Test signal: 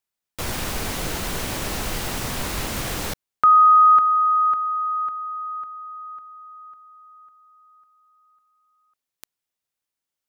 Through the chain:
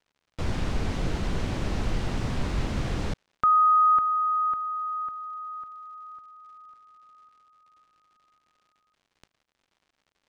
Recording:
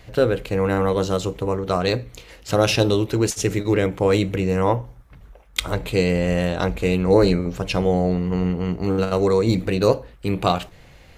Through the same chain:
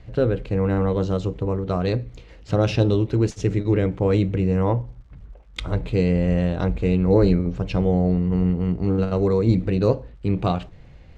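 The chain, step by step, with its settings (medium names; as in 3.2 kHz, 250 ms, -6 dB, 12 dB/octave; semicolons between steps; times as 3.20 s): bass shelf 370 Hz +11 dB; crackle 170 per s -44 dBFS; distance through air 100 m; trim -7 dB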